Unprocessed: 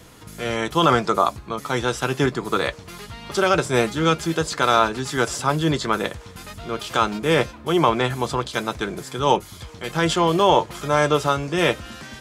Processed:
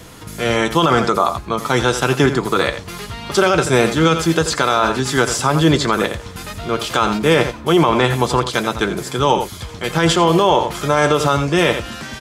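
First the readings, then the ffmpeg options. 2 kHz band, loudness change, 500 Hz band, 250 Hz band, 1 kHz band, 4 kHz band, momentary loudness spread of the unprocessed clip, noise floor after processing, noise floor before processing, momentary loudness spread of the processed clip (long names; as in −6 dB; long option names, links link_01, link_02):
+5.5 dB, +5.0 dB, +5.0 dB, +6.5 dB, +3.5 dB, +5.5 dB, 13 LU, −34 dBFS, −42 dBFS, 9 LU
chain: -af "aecho=1:1:85:0.237,alimiter=level_in=10dB:limit=-1dB:release=50:level=0:latency=1,volume=-2.5dB"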